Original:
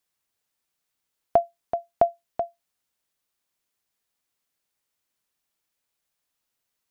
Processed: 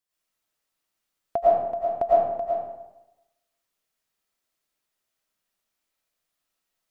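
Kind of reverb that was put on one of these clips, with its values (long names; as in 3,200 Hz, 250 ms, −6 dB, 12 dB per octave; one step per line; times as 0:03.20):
comb and all-pass reverb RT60 0.98 s, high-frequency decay 0.65×, pre-delay 70 ms, DRR −9 dB
level −8 dB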